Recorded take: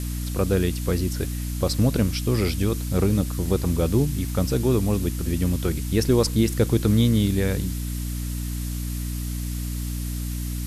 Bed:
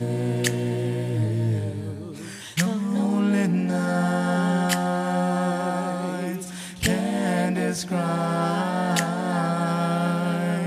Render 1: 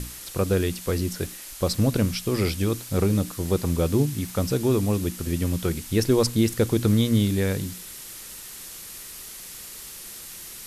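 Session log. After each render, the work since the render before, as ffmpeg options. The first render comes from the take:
-af "bandreject=f=60:t=h:w=6,bandreject=f=120:t=h:w=6,bandreject=f=180:t=h:w=6,bandreject=f=240:t=h:w=6,bandreject=f=300:t=h:w=6"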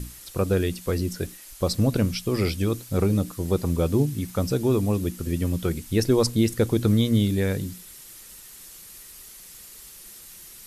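-af "afftdn=nr=7:nf=-40"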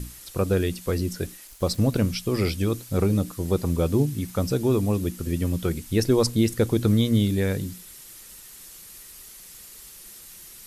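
-filter_complex "[0:a]asettb=1/sr,asplit=3[a][b][c];[a]atrim=end=1.474[d];[b]atrim=start=1.47:end=2.02,asetpts=PTS-STARTPTS,afade=t=in:d=0.004:c=qsin,afade=t=out:st=0.546:d=0.004:c=qsin,aeval=exprs='sgn(val(0))*max(abs(val(0))-0.00299,0)':c=same[e];[c]atrim=start=2.016[f];[d][e]acrossfade=d=0.004:c1=hsin:c2=qsin[g];[g][f]acrossfade=d=0.004:c1=qsin:c2=hsin"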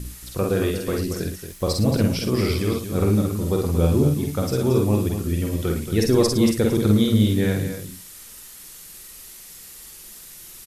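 -filter_complex "[0:a]asplit=2[a][b];[b]adelay=48,volume=-3dB[c];[a][c]amix=inputs=2:normalize=0,aecho=1:1:61.22|227.4:0.398|0.355"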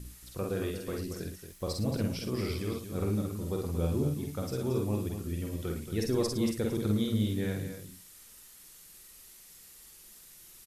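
-af "volume=-11.5dB"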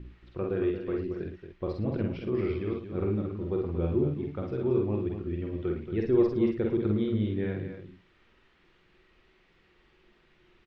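-af "lowpass=f=2.8k:w=0.5412,lowpass=f=2.8k:w=1.3066,equalizer=f=360:w=6.1:g=10.5"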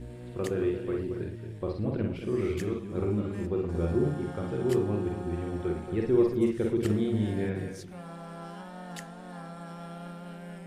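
-filter_complex "[1:a]volume=-18.5dB[a];[0:a][a]amix=inputs=2:normalize=0"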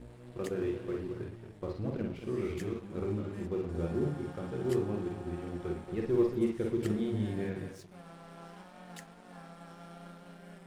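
-af "aeval=exprs='sgn(val(0))*max(abs(val(0))-0.00398,0)':c=same,flanger=delay=3.9:depth=4.6:regen=-63:speed=2:shape=triangular"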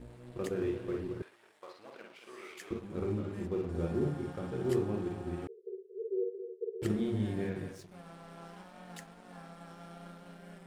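-filter_complex "[0:a]asettb=1/sr,asplit=3[a][b][c];[a]atrim=end=1.224[d];[b]atrim=start=1.22:end=2.71,asetpts=PTS-STARTPTS,afade=t=in:d=0.004:c=qsin,afade=t=out:st=1.486:d=0.004:c=qsin,highpass=940[e];[c]atrim=start=2.706[f];[d][e]acrossfade=d=0.004:c1=hsin:c2=qsin[g];[g][f]acrossfade=d=0.004:c1=qsin:c2=hsin,asettb=1/sr,asplit=3[h][i][j];[h]atrim=end=5.474[k];[i]atrim=start=5.47:end=6.82,asetpts=PTS-STARTPTS,afade=t=in:d=0.004:c=qsin,afade=t=out:st=1.346:d=0.004:c=qsin,asuperpass=centerf=430:order=20:qfactor=3.6[l];[j]atrim=start=6.816[m];[k][l]acrossfade=d=0.004:c1=hsin:c2=qsin[n];[n][m]acrossfade=d=0.004:c1=qsin:c2=hsin"

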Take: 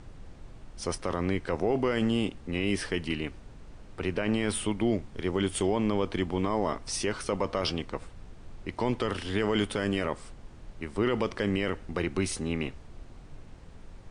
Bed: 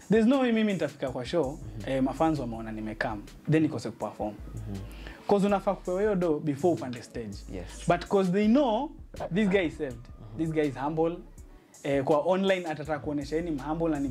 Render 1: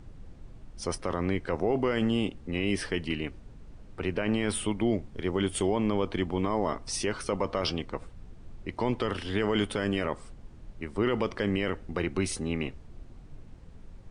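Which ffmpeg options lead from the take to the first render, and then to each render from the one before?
-af "afftdn=nr=6:nf=-49"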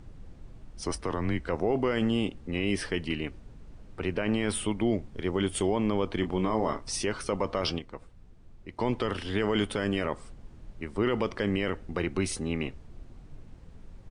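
-filter_complex "[0:a]asettb=1/sr,asplit=3[a][b][c];[a]atrim=end=0.824[d];[b]atrim=start=0.82:end=1.48,asetpts=PTS-STARTPTS,afade=t=in:d=0.004:c=qsin,afade=t=out:st=0.656:d=0.004:c=qsin,afreqshift=-79[e];[c]atrim=start=1.476[f];[d][e]acrossfade=d=0.004:c1=hsin:c2=qsin[g];[g][f]acrossfade=d=0.004:c1=qsin:c2=hsin,asplit=3[h][i][j];[h]afade=t=out:st=6.22:d=0.02[k];[i]asplit=2[l][m];[m]adelay=27,volume=-8dB[n];[l][n]amix=inputs=2:normalize=0,afade=t=in:st=6.22:d=0.02,afade=t=out:st=6.82:d=0.02[o];[j]afade=t=in:st=6.82:d=0.02[p];[k][o][p]amix=inputs=3:normalize=0,asplit=3[q][r][s];[q]atrim=end=7.792[t];[r]atrim=start=7.788:end=8.792,asetpts=PTS-STARTPTS,volume=-7dB[u];[s]atrim=start=8.788[v];[t][u]acrossfade=d=0.004:c1=hsin:c2=hsin[w];[w][v]acrossfade=d=0.004:c1=hsin:c2=hsin"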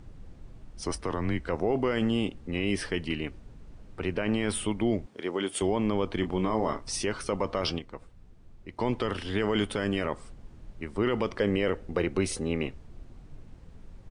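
-filter_complex "[0:a]asettb=1/sr,asplit=3[a][b][c];[a]atrim=end=5.064[d];[b]atrim=start=5.06:end=5.62,asetpts=PTS-STARTPTS,afade=t=in:d=0.004:c=qsin,afade=t=out:st=0.556:d=0.004:c=qsin,highpass=280[e];[c]atrim=start=5.616[f];[d][e]acrossfade=d=0.004:c1=hsin:c2=qsin[g];[g][f]acrossfade=d=0.004:c1=qsin:c2=hsin,asettb=1/sr,asplit=3[h][i][j];[h]atrim=end=11.404[k];[i]atrim=start=11.4:end=12.66,asetpts=PTS-STARTPTS,afade=t=in:d=0.004:c=qsin,afade=t=out:st=1.256:d=0.004:c=qsin,equalizer=f=490:w=2.2:g=6.5[l];[j]atrim=start=12.656[m];[k][l]acrossfade=d=0.004:c1=hsin:c2=qsin[n];[n][m]acrossfade=d=0.004:c1=qsin:c2=hsin"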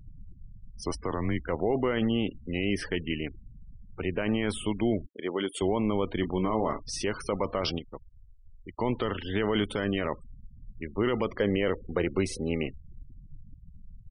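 -filter_complex "[0:a]afftfilt=real='re*gte(hypot(re,im),0.0126)':imag='im*gte(hypot(re,im),0.0126)':win_size=1024:overlap=0.75,acrossover=split=7300[a][b];[b]acompressor=threshold=-47dB:ratio=4:attack=1:release=60[c];[a][c]amix=inputs=2:normalize=0"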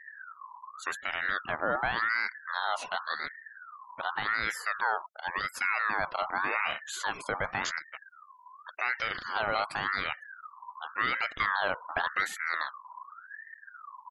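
-af "aeval=exprs='val(0)*sin(2*PI*1400*n/s+1400*0.3/0.89*sin(2*PI*0.89*n/s))':c=same"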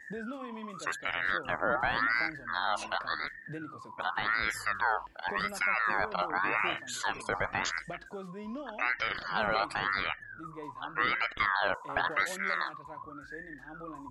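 -filter_complex "[1:a]volume=-18dB[a];[0:a][a]amix=inputs=2:normalize=0"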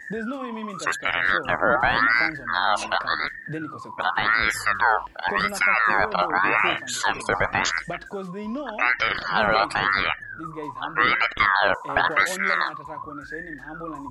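-af "volume=9.5dB"

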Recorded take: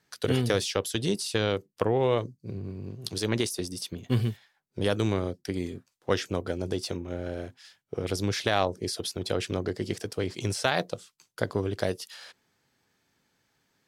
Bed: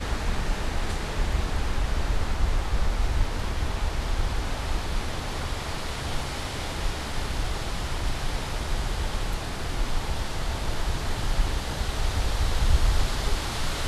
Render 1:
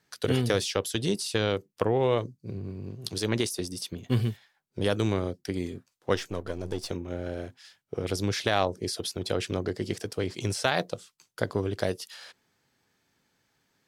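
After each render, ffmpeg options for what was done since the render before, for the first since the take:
-filter_complex "[0:a]asettb=1/sr,asplit=3[a][b][c];[a]atrim=end=6.154[d];[b]atrim=start=6.15:end=6.91,asetpts=PTS-STARTPTS,afade=t=in:d=0.004:c=qsin,afade=t=out:st=0.756:d=0.004:c=qsin,aeval=exprs='if(lt(val(0),0),0.447*val(0),val(0))':c=same[e];[c]atrim=start=6.906[f];[d][e]acrossfade=d=0.004:c1=hsin:c2=qsin[g];[g][f]acrossfade=d=0.004:c1=qsin:c2=hsin"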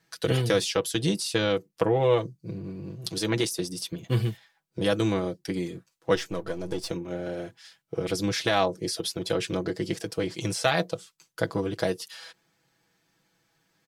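-af "aecho=1:1:6.1:0.75"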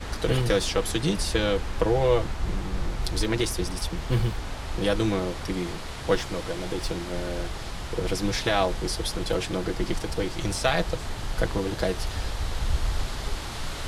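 -filter_complex "[1:a]volume=-4.5dB[a];[0:a][a]amix=inputs=2:normalize=0"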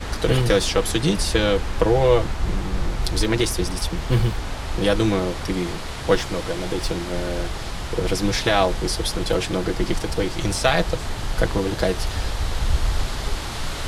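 -af "volume=5dB"

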